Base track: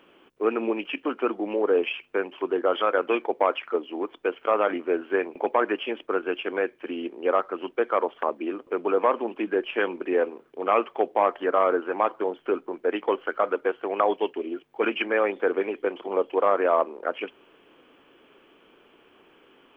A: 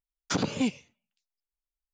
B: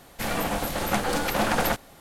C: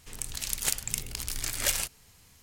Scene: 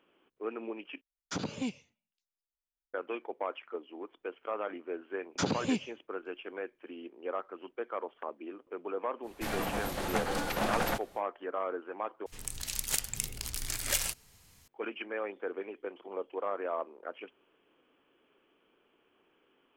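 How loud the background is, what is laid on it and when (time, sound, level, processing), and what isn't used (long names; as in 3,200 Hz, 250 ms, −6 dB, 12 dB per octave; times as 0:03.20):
base track −13.5 dB
0:01.01: overwrite with A −8 dB
0:05.08: mix in A −3.5 dB
0:09.22: mix in B −7 dB, fades 0.05 s + high-shelf EQ 8,700 Hz −4 dB
0:12.26: overwrite with C −3 dB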